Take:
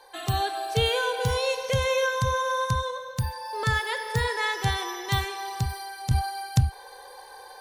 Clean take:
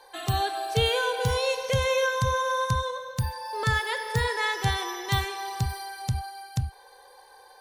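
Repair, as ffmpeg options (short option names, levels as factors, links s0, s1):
-af "asetnsamples=n=441:p=0,asendcmd='6.11 volume volume -7dB',volume=1"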